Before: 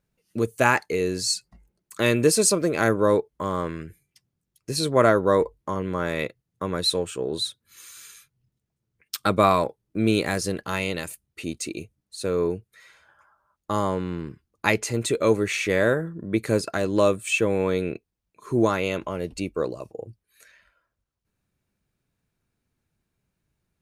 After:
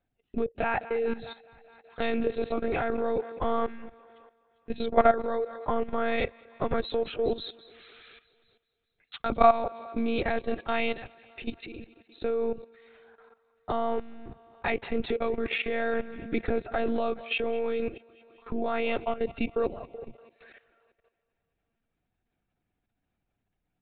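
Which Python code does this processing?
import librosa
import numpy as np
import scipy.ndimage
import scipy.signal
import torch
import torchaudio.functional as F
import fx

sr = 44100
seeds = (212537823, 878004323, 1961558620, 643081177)

p1 = fx.lpc_monotone(x, sr, seeds[0], pitch_hz=230.0, order=16)
p2 = fx.peak_eq(p1, sr, hz=730.0, db=9.5, octaves=0.22)
p3 = p2 + fx.echo_thinned(p2, sr, ms=208, feedback_pct=63, hz=190.0, wet_db=-19.0, dry=0)
p4 = fx.level_steps(p3, sr, step_db=14)
p5 = fx.notch(p4, sr, hz=1100.0, q=19.0)
y = fx.rider(p5, sr, range_db=3, speed_s=0.5)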